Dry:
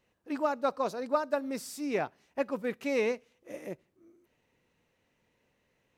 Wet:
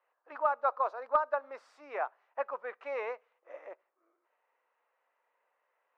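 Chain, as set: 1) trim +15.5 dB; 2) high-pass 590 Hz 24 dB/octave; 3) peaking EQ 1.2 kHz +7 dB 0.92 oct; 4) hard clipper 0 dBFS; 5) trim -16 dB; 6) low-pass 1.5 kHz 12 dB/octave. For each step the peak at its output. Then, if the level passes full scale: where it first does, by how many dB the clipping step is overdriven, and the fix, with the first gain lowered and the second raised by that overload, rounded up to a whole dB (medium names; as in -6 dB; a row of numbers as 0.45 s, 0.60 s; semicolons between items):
-0.5 dBFS, -1.5 dBFS, +3.5 dBFS, 0.0 dBFS, -16.0 dBFS, -16.0 dBFS; step 3, 3.5 dB; step 1 +11.5 dB, step 5 -12 dB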